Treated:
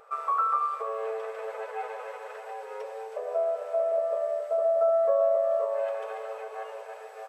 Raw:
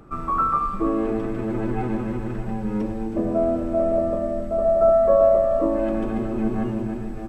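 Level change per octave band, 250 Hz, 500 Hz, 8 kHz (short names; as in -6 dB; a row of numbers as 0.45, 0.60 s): under -40 dB, -6.0 dB, n/a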